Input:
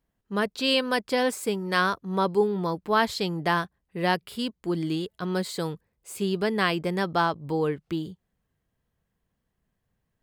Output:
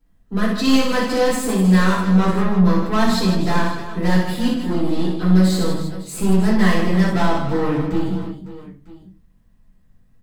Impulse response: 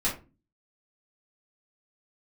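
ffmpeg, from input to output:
-filter_complex "[0:a]bass=frequency=250:gain=8,treble=frequency=4000:gain=2,bandreject=frequency=50:width_type=h:width=6,bandreject=frequency=100:width_type=h:width=6,bandreject=frequency=150:width_type=h:width=6,bandreject=frequency=200:width_type=h:width=6,bandreject=frequency=250:width_type=h:width=6,asoftclip=type=tanh:threshold=-25.5dB,aecho=1:1:60|156|309.6|555.4|948.6:0.631|0.398|0.251|0.158|0.1[link_01];[1:a]atrim=start_sample=2205[link_02];[link_01][link_02]afir=irnorm=-1:irlink=0,volume=-1dB"

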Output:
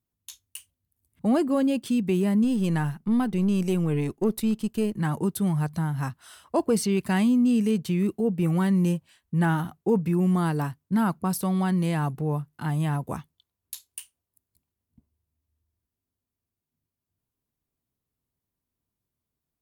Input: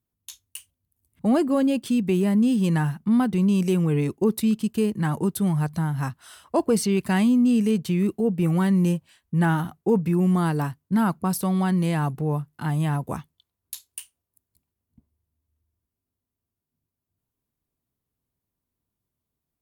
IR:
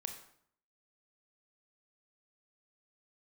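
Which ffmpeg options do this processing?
-filter_complex "[0:a]asettb=1/sr,asplit=3[link_01][link_02][link_03];[link_01]atrim=end=2.444[link_04];[link_02]atrim=start=2.44:end=4.98,asetpts=PTS-STARTPTS,afade=type=in:duration=0.004:curve=qsin,afade=type=out:start_time=2.536:duration=0.004:curve=qsin,aeval=exprs='if(lt(val(0),0),0.708*val(0),val(0))':channel_layout=same[link_05];[link_03]atrim=start=4.976[link_06];[link_04][link_05]acrossfade=duration=0.004:curve1=hsin:curve2=qsin[link_07];[link_07][link_06]acrossfade=duration=0.004:curve1=qsin:curve2=hsin,volume=-2dB"

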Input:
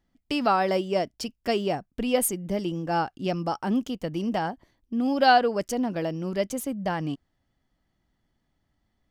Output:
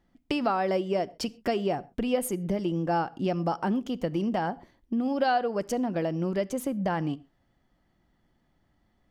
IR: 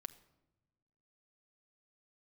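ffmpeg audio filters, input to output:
-filter_complex "[0:a]highshelf=frequency=3000:gain=-8.5,acompressor=threshold=-33dB:ratio=3,asplit=2[link_01][link_02];[1:a]atrim=start_sample=2205,afade=type=out:start_time=0.19:duration=0.01,atrim=end_sample=8820,lowshelf=frequency=110:gain=-10[link_03];[link_02][link_03]afir=irnorm=-1:irlink=0,volume=6.5dB[link_04];[link_01][link_04]amix=inputs=2:normalize=0"

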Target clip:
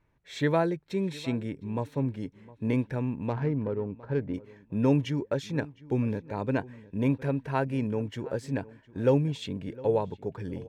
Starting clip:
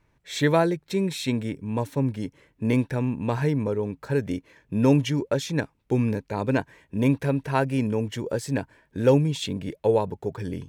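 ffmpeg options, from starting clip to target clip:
ffmpeg -i in.wav -filter_complex "[0:a]highshelf=frequency=5100:gain=-12,asettb=1/sr,asplit=3[link_01][link_02][link_03];[link_01]atrim=end=3.294[link_04];[link_02]atrim=start=3.29:end=4.34,asetpts=PTS-STARTPTS,afade=type=in:duration=0.004:curve=qsin,afade=type=out:start_time=1.046:duration=0.004:curve=qsin,adynamicsmooth=sensitivity=1.5:basefreq=1300[link_05];[link_03]atrim=start=4.336[link_06];[link_04][link_05]acrossfade=duration=0.004:curve1=hsin:curve2=qsin[link_07];[link_07][link_06]acrossfade=duration=0.004:curve1=qsin:curve2=hsin,asplit=2[link_08][link_09];[link_09]adelay=709,lowpass=frequency=2900:poles=1,volume=-20dB,asplit=2[link_10][link_11];[link_11]adelay=709,lowpass=frequency=2900:poles=1,volume=0.23[link_12];[link_10][link_12]amix=inputs=2:normalize=0[link_13];[link_08][link_13]amix=inputs=2:normalize=0,volume=-4.5dB" out.wav

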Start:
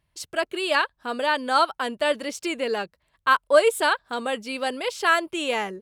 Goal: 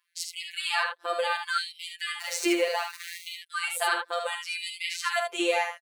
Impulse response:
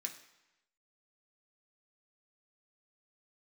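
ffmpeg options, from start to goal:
-filter_complex "[0:a]asettb=1/sr,asplit=3[link_01][link_02][link_03];[link_01]atrim=end=2.204[link_04];[link_02]atrim=start=2.2:end=3.31,asetpts=PTS-STARTPTS,afade=type=in:duration=0.004:curve=qsin,afade=type=out:start_time=1.106:duration=0.004:curve=qsin,aeval=exprs='val(0)+0.5*0.02*sgn(val(0))':channel_layout=same[link_05];[link_03]atrim=start=3.306[link_06];[link_04][link_05]acrossfade=duration=0.004:curve1=hsin:curve2=qsin[link_07];[link_07][link_06]acrossfade=duration=0.004:curve1=qsin:curve2=hsin,asplit=2[link_08][link_09];[link_09]acompressor=threshold=-30dB:ratio=6,volume=-2.5dB[link_10];[link_08][link_10]amix=inputs=2:normalize=0,alimiter=limit=-11.5dB:level=0:latency=1:release=61,afftfilt=real='hypot(re,im)*cos(PI*b)':imag='0':win_size=1024:overlap=0.75,asplit=2[link_11][link_12];[link_12]aecho=0:1:49|75:0.316|0.501[link_13];[link_11][link_13]amix=inputs=2:normalize=0,afftfilt=real='re*gte(b*sr/1024,320*pow(2000/320,0.5+0.5*sin(2*PI*0.68*pts/sr)))':imag='im*gte(b*sr/1024,320*pow(2000/320,0.5+0.5*sin(2*PI*0.68*pts/sr)))':win_size=1024:overlap=0.75"

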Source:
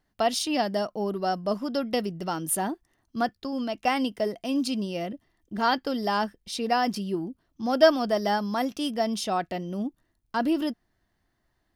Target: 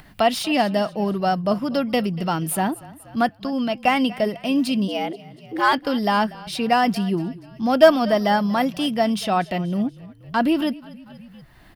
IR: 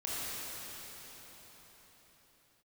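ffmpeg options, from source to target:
-filter_complex "[0:a]asplit=3[link_01][link_02][link_03];[link_01]afade=type=out:start_time=4.87:duration=0.02[link_04];[link_02]afreqshift=120,afade=type=in:start_time=4.87:duration=0.02,afade=type=out:start_time=5.72:duration=0.02[link_05];[link_03]afade=type=in:start_time=5.72:duration=0.02[link_06];[link_04][link_05][link_06]amix=inputs=3:normalize=0,asplit=4[link_07][link_08][link_09][link_10];[link_08]adelay=239,afreqshift=-31,volume=-20.5dB[link_11];[link_09]adelay=478,afreqshift=-62,volume=-27.2dB[link_12];[link_10]adelay=717,afreqshift=-93,volume=-34dB[link_13];[link_07][link_11][link_12][link_13]amix=inputs=4:normalize=0,acrossover=split=620|1400[link_14][link_15][link_16];[link_16]asoftclip=type=tanh:threshold=-27.5dB[link_17];[link_14][link_15][link_17]amix=inputs=3:normalize=0,acompressor=mode=upward:threshold=-40dB:ratio=2.5,equalizer=frequency=160:width_type=o:width=0.67:gain=5,equalizer=frequency=400:width_type=o:width=0.67:gain=-4,equalizer=frequency=2500:width_type=o:width=0.67:gain=5,equalizer=frequency=6300:width_type=o:width=0.67:gain=-7,volume=6.5dB"

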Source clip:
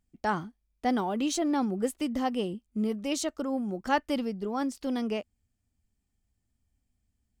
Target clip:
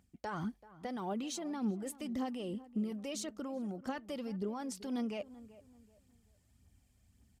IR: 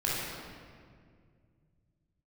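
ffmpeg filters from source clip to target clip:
-filter_complex "[0:a]highpass=68,areverse,acompressor=threshold=-41dB:ratio=6,areverse,alimiter=level_in=17dB:limit=-24dB:level=0:latency=1:release=112,volume=-17dB,aphaser=in_gain=1:out_gain=1:delay=2.2:decay=0.42:speed=1.8:type=triangular,asplit=2[link_01][link_02];[link_02]adelay=384,lowpass=frequency=1400:poles=1,volume=-17dB,asplit=2[link_03][link_04];[link_04]adelay=384,lowpass=frequency=1400:poles=1,volume=0.33,asplit=2[link_05][link_06];[link_06]adelay=384,lowpass=frequency=1400:poles=1,volume=0.33[link_07];[link_03][link_05][link_07]amix=inputs=3:normalize=0[link_08];[link_01][link_08]amix=inputs=2:normalize=0,aresample=32000,aresample=44100,volume=9dB"

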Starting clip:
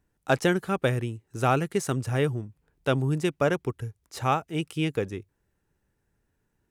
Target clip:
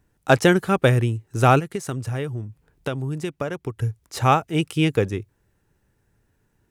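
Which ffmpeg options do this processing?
ffmpeg -i in.wav -filter_complex "[0:a]equalizer=frequency=110:width=3.8:gain=4.5,asplit=3[link_01][link_02][link_03];[link_01]afade=type=out:start_time=1.59:duration=0.02[link_04];[link_02]acompressor=threshold=-32dB:ratio=6,afade=type=in:start_time=1.59:duration=0.02,afade=type=out:start_time=3.77:duration=0.02[link_05];[link_03]afade=type=in:start_time=3.77:duration=0.02[link_06];[link_04][link_05][link_06]amix=inputs=3:normalize=0,volume=7dB" out.wav

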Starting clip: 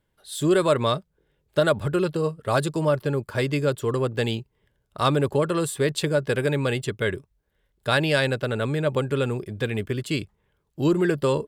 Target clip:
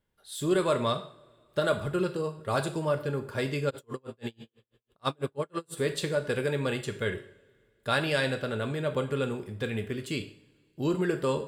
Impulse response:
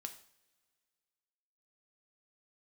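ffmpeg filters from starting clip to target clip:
-filter_complex "[1:a]atrim=start_sample=2205[link_01];[0:a][link_01]afir=irnorm=-1:irlink=0,asplit=3[link_02][link_03][link_04];[link_02]afade=type=out:start_time=3.69:duration=0.02[link_05];[link_03]aeval=exprs='val(0)*pow(10,-40*(0.5-0.5*cos(2*PI*6.1*n/s))/20)':channel_layout=same,afade=type=in:start_time=3.69:duration=0.02,afade=type=out:start_time=5.76:duration=0.02[link_06];[link_04]afade=type=in:start_time=5.76:duration=0.02[link_07];[link_05][link_06][link_07]amix=inputs=3:normalize=0,volume=-1.5dB"

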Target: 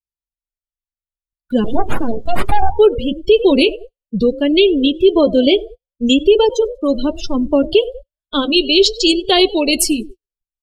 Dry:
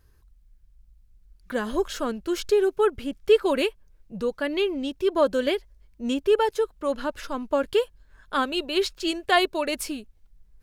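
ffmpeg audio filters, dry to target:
ffmpeg -i in.wav -filter_complex "[0:a]acrossover=split=400[link_01][link_02];[link_02]acompressor=threshold=-58dB:ratio=1.5[link_03];[link_01][link_03]amix=inputs=2:normalize=0,aexciter=amount=5:drive=9.1:freq=2500,asplit=5[link_04][link_05][link_06][link_07][link_08];[link_05]adelay=97,afreqshift=43,volume=-16.5dB[link_09];[link_06]adelay=194,afreqshift=86,volume=-22.5dB[link_10];[link_07]adelay=291,afreqshift=129,volume=-28.5dB[link_11];[link_08]adelay=388,afreqshift=172,volume=-34.6dB[link_12];[link_04][link_09][link_10][link_11][link_12]amix=inputs=5:normalize=0,asettb=1/sr,asplit=3[link_13][link_14][link_15];[link_13]atrim=end=1.644[link_16];[link_14]atrim=start=1.64:end=2.79,asetpts=PTS-STARTPTS,afade=type=in:duration=0.004:curve=qsin,afade=type=out:start_time=1.146:duration=0.004:curve=qsin,aeval=exprs='abs(val(0))':channel_layout=same[link_17];[link_15]atrim=start=2.786[link_18];[link_16][link_17]acrossfade=duration=0.004:curve1=hsin:curve2=qsin[link_19];[link_19][link_18]acrossfade=duration=0.004:curve1=qsin:curve2=hsin,flanger=delay=5.1:depth=5.9:regen=-68:speed=0.64:shape=triangular,agate=range=-30dB:threshold=-47dB:ratio=16:detection=peak,highshelf=frequency=2400:gain=-9.5,afftdn=noise_reduction=30:noise_floor=-40,alimiter=level_in=22dB:limit=-1dB:release=50:level=0:latency=1,volume=-1dB" out.wav

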